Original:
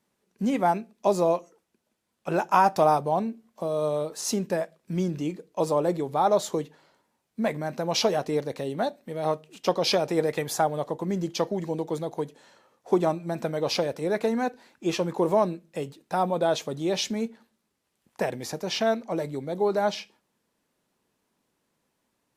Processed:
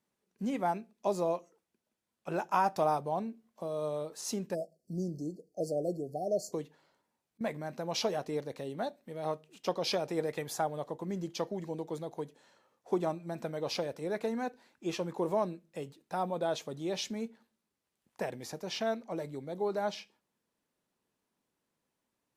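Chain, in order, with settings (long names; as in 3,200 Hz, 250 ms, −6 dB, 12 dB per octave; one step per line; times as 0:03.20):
0:06.18–0:07.41: volume swells 206 ms
0:04.54–0:06.53: time-frequency box erased 760–4,200 Hz
level −8.5 dB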